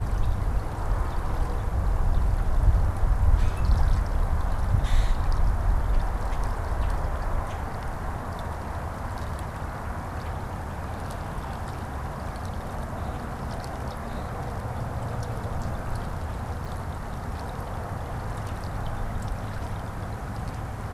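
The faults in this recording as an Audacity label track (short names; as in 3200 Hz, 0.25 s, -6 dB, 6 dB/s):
16.650000	16.650000	gap 3.5 ms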